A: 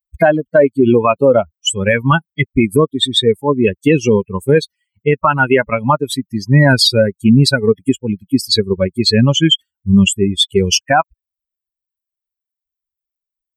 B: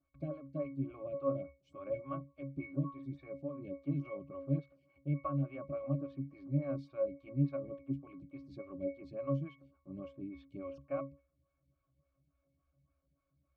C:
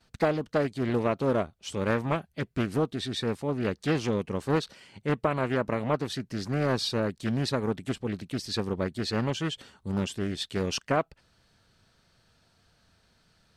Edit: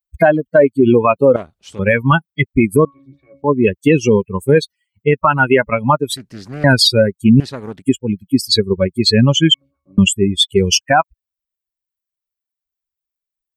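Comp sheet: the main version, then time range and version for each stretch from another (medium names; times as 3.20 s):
A
1.36–1.79 s: from C
2.85–3.44 s: from B
6.17–6.64 s: from C
7.40–7.82 s: from C
9.54–9.98 s: from B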